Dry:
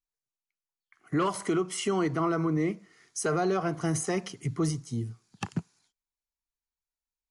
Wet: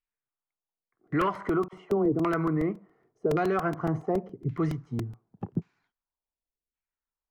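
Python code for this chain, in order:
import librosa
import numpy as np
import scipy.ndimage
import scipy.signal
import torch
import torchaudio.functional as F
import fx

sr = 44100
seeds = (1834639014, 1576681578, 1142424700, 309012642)

y = fx.dispersion(x, sr, late='lows', ms=49.0, hz=810.0, at=(1.68, 2.12))
y = fx.filter_lfo_lowpass(y, sr, shape='saw_down', hz=0.89, low_hz=370.0, high_hz=2600.0, q=1.7)
y = fx.buffer_crackle(y, sr, first_s=0.51, period_s=0.14, block=128, kind='repeat')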